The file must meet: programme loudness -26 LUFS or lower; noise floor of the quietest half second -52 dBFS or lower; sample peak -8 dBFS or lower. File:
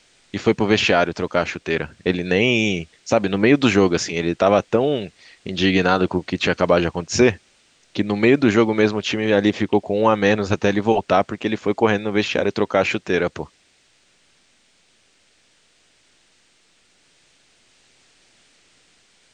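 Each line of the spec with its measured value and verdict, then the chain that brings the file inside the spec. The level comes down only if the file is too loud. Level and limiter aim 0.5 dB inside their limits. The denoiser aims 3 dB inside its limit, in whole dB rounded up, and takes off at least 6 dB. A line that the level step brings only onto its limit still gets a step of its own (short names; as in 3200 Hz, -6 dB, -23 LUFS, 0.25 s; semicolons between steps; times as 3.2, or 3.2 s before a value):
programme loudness -19.0 LUFS: fail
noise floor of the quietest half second -59 dBFS: OK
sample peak -3.0 dBFS: fail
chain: gain -7.5 dB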